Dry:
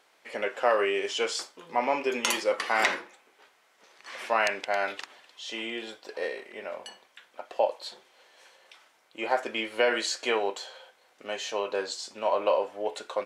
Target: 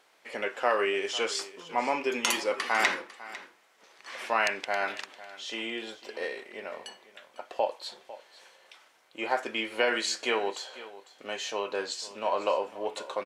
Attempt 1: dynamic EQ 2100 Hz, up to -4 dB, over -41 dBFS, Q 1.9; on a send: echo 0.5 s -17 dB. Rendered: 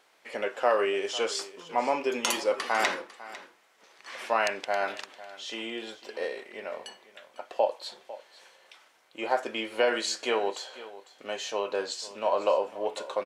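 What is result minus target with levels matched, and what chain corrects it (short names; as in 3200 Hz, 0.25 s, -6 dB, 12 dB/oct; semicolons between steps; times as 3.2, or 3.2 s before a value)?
2000 Hz band -3.0 dB
dynamic EQ 580 Hz, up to -4 dB, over -41 dBFS, Q 1.9; on a send: echo 0.5 s -17 dB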